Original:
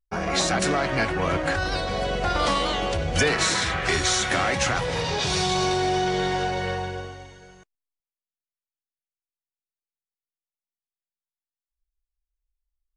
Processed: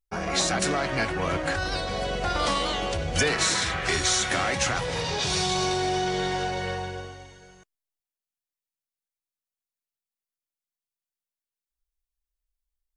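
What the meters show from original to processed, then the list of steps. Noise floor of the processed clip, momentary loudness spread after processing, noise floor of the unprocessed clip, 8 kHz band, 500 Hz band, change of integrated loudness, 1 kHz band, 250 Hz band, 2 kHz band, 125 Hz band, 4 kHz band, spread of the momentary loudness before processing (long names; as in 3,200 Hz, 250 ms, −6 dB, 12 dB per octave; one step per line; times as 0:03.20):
below −85 dBFS, 7 LU, below −85 dBFS, +0.5 dB, −3.0 dB, −2.0 dB, −3.0 dB, −3.0 dB, −2.5 dB, −3.0 dB, −1.0 dB, 5 LU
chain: high-shelf EQ 4,600 Hz +5 dB
level −3 dB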